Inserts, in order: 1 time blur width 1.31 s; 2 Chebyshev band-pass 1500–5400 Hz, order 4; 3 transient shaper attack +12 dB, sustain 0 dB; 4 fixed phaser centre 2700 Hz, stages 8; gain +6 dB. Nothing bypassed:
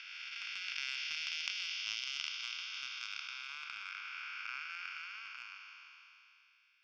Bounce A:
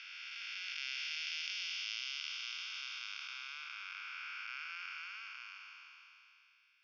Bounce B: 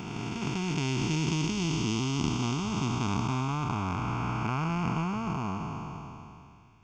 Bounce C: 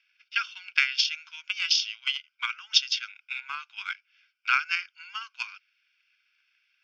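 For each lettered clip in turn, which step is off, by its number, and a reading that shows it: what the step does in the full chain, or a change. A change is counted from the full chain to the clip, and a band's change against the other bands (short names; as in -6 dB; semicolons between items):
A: 3, crest factor change -4.0 dB; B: 2, 1 kHz band +17.5 dB; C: 1, 1 kHz band +2.5 dB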